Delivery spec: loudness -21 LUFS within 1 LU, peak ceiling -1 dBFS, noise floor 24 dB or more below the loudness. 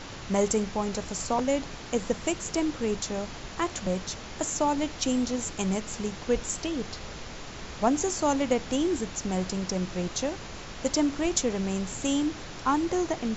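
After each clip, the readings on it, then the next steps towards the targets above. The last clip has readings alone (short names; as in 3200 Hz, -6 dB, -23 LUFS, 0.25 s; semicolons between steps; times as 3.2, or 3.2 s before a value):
noise floor -41 dBFS; noise floor target -53 dBFS; loudness -29.0 LUFS; peak -11.0 dBFS; loudness target -21.0 LUFS
-> noise print and reduce 12 dB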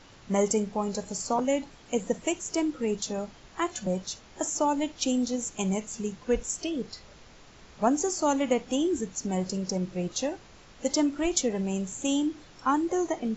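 noise floor -53 dBFS; loudness -29.0 LUFS; peak -11.5 dBFS; loudness target -21.0 LUFS
-> gain +8 dB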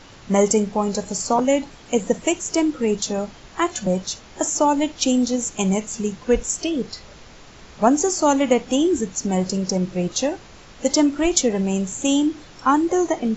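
loudness -21.0 LUFS; peak -3.5 dBFS; noise floor -45 dBFS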